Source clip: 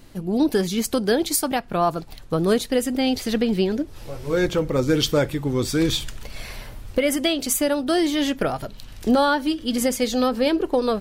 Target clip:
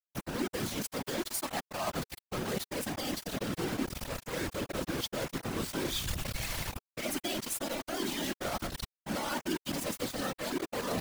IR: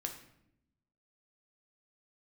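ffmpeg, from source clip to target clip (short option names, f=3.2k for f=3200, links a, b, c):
-af "areverse,acompressor=threshold=-33dB:ratio=12,areverse,acrusher=bits=5:mix=0:aa=0.000001,afftfilt=real='hypot(re,im)*cos(2*PI*random(0))':imag='hypot(re,im)*sin(2*PI*random(1))':win_size=512:overlap=0.75,equalizer=f=430:t=o:w=0.26:g=-4.5,volume=6.5dB"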